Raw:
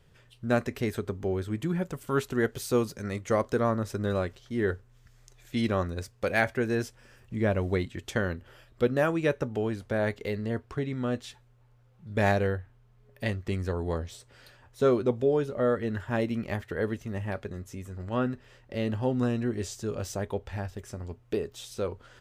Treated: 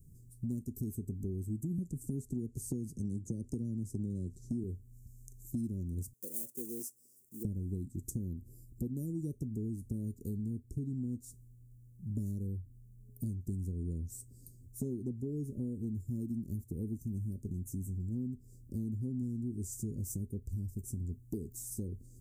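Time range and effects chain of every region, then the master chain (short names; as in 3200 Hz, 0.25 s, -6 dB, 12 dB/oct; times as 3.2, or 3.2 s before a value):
1.78–4.64 LPF 8500 Hz + three-band squash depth 70%
6.13–7.45 block floating point 5-bit + Chebyshev high-pass 640 Hz
whole clip: inverse Chebyshev band-stop 780–3100 Hz, stop band 60 dB; high shelf 10000 Hz +8 dB; compressor, threshold -39 dBFS; gain +4.5 dB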